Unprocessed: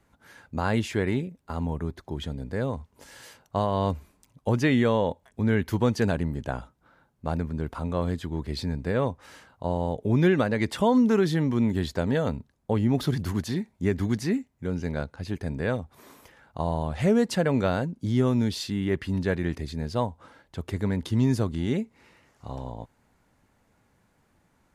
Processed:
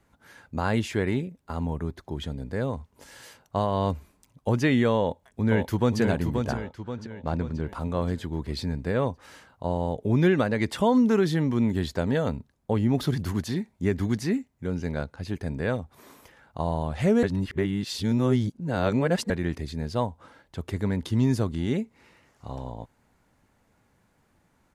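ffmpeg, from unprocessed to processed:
-filter_complex "[0:a]asplit=2[s0][s1];[s1]afade=t=in:st=4.98:d=0.01,afade=t=out:st=6:d=0.01,aecho=0:1:530|1060|1590|2120|2650|3180:0.530884|0.265442|0.132721|0.0663606|0.0331803|0.0165901[s2];[s0][s2]amix=inputs=2:normalize=0,asettb=1/sr,asplit=3[s3][s4][s5];[s3]atrim=end=6.574[s6];[s4]atrim=start=6.57:end=7.69,asetpts=PTS-STARTPTS,afade=t=in:d=0.004:c=qsin,afade=t=out:st=1.116:d=0.004:c=qsin,lowpass=6300[s7];[s5]atrim=start=7.686[s8];[s6][s7]acrossfade=d=0.004:c1=hsin:c2=qsin[s9];[s9][s8]acrossfade=d=0.004:c1=qsin:c2=hsin,asplit=3[s10][s11][s12];[s10]atrim=end=17.232[s13];[s11]atrim=start=17.228:end=19.302,asetpts=PTS-STARTPTS,areverse[s14];[s12]atrim=start=19.298[s15];[s13][s14]acrossfade=d=0.004:c1=hsin:c2=hsin[s16];[s16][s15]acrossfade=d=0.004:c1=hsin:c2=hsin"

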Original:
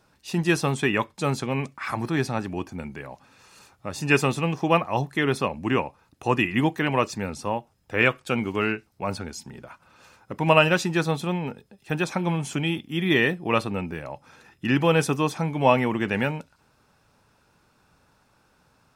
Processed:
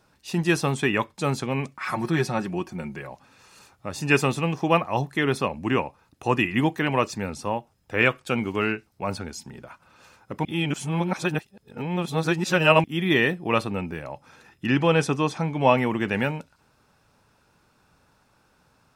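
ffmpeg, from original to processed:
-filter_complex "[0:a]asettb=1/sr,asplit=3[s0][s1][s2];[s0]atrim=end=1.784[s3];[s1]atrim=start=1.78:end=3.1,asetpts=PTS-STARTPTS,afade=t=in:d=0.004:c=qsin,afade=t=out:st=1.316:d=0.004:c=qsin,aecho=1:1:5.5:0.61,atrim=end_sample=58212[s4];[s2]atrim=start=3.096[s5];[s3][s4]acrossfade=d=0.004:c1=hsin:c2=qsin[s6];[s6][s5]acrossfade=d=0.004:c1=qsin:c2=hsin,asettb=1/sr,asplit=3[s7][s8][s9];[s7]atrim=end=14.664[s10];[s8]atrim=start=14.66:end=15.77,asetpts=PTS-STARTPTS,afade=t=in:d=0.004:c=qsin,afade=t=out:st=1.106:d=0.004:c=qsin,lowpass=7800[s11];[s9]atrim=start=15.766[s12];[s10][s11]acrossfade=d=0.004:c1=hsin:c2=qsin[s13];[s13][s12]acrossfade=d=0.004:c1=qsin:c2=hsin,asplit=3[s14][s15][s16];[s14]atrim=end=10.452[s17];[s15]atrim=start=10.448:end=12.842,asetpts=PTS-STARTPTS,areverse[s18];[s16]atrim=start=12.838[s19];[s17][s18]acrossfade=d=0.004:c1=hsin:c2=hsin[s20];[s20][s19]acrossfade=d=0.004:c1=hsin:c2=hsin"

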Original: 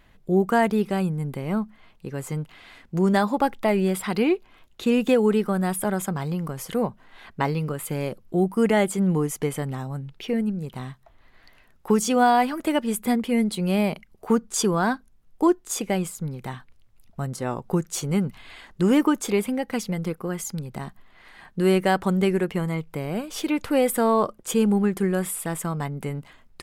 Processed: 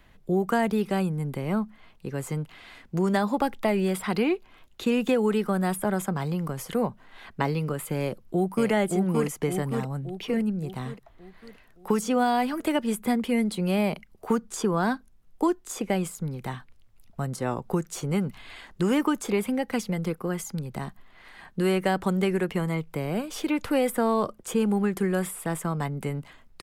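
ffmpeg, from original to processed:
-filter_complex "[0:a]asplit=2[s0][s1];[s1]afade=t=in:st=8:d=0.01,afade=t=out:st=8.7:d=0.01,aecho=0:1:570|1140|1710|2280|2850|3420|3990:0.668344|0.334172|0.167086|0.083543|0.0417715|0.0208857|0.0104429[s2];[s0][s2]amix=inputs=2:normalize=0,acrossover=split=220|610|2100[s3][s4][s5][s6];[s3]acompressor=threshold=0.0355:ratio=4[s7];[s4]acompressor=threshold=0.0501:ratio=4[s8];[s5]acompressor=threshold=0.0447:ratio=4[s9];[s6]acompressor=threshold=0.0158:ratio=4[s10];[s7][s8][s9][s10]amix=inputs=4:normalize=0"

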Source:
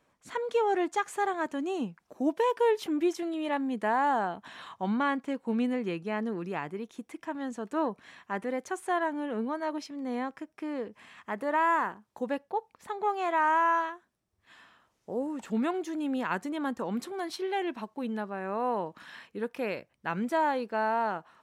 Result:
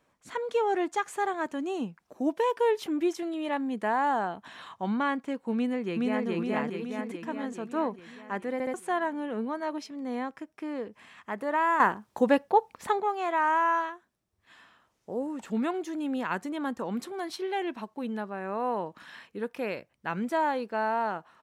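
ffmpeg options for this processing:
-filter_complex "[0:a]asplit=2[s0][s1];[s1]afade=t=in:st=5.54:d=0.01,afade=t=out:st=6.27:d=0.01,aecho=0:1:420|840|1260|1680|2100|2520|2940|3360|3780:0.944061|0.566437|0.339862|0.203917|0.12235|0.0734102|0.0440461|0.0264277|0.0158566[s2];[s0][s2]amix=inputs=2:normalize=0,asplit=6[s3][s4][s5][s6][s7][s8];[s3]atrim=end=8.602[s9];[s4]atrim=start=8.528:end=8.602[s10];[s5]atrim=start=8.528:end=8.602[s11];[s6]atrim=start=8.738:end=11.802[s12];[s7]atrim=start=11.798:end=13.002,asetpts=PTS-STARTPTS,volume=2.99[s13];[s8]atrim=start=12.998[s14];[s9][s10]acrossfade=d=0.004:c1=hsin:c2=hsin[s15];[s15][s11]acrossfade=d=0.004:c1=hsin:c2=hsin[s16];[s16][s12]acrossfade=d=0.004:c1=hsin:c2=hsin[s17];[s17][s13]acrossfade=d=0.004:c1=hsin:c2=hsin[s18];[s18][s14]acrossfade=d=0.004:c1=hsin:c2=hsin"

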